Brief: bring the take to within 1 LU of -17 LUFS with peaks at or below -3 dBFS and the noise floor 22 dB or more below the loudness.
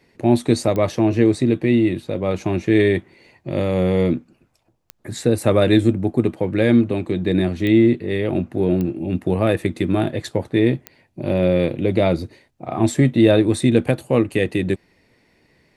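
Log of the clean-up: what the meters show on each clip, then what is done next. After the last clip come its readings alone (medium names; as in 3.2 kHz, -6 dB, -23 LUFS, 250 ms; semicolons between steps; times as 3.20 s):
clicks found 5; loudness -19.0 LUFS; peak level -2.5 dBFS; loudness target -17.0 LUFS
-> de-click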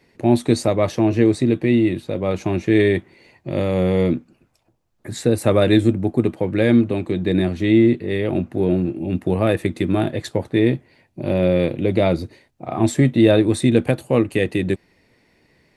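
clicks found 0; loudness -19.0 LUFS; peak level -2.5 dBFS; loudness target -17.0 LUFS
-> trim +2 dB; peak limiter -3 dBFS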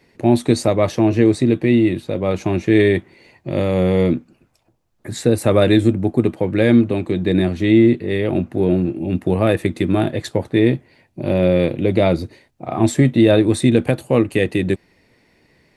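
loudness -17.0 LUFS; peak level -3.0 dBFS; noise floor -62 dBFS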